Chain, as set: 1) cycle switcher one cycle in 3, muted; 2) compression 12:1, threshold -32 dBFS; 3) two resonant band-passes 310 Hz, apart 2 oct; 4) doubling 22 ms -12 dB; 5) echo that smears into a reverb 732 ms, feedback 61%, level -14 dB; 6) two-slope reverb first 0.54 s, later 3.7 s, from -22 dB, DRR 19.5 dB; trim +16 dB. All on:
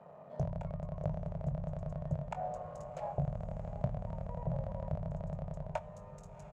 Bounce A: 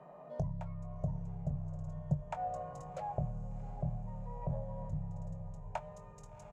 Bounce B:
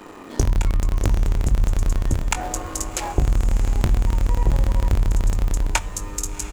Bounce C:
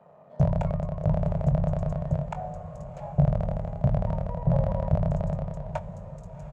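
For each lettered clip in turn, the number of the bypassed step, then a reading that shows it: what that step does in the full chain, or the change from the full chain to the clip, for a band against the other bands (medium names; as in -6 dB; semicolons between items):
1, momentary loudness spread change +1 LU; 3, 2 kHz band +13.0 dB; 2, mean gain reduction 8.5 dB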